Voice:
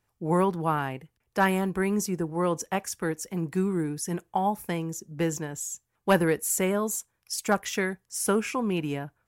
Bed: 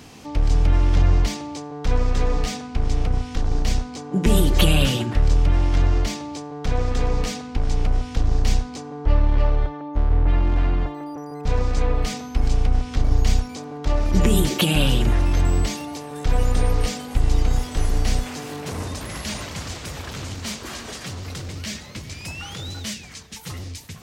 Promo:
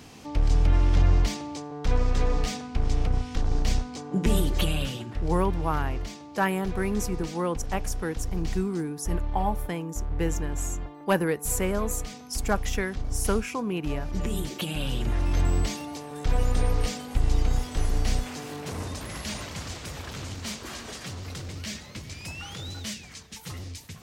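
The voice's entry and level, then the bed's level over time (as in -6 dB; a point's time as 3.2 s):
5.00 s, -2.0 dB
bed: 4.08 s -3.5 dB
4.93 s -12 dB
14.79 s -12 dB
15.38 s -4.5 dB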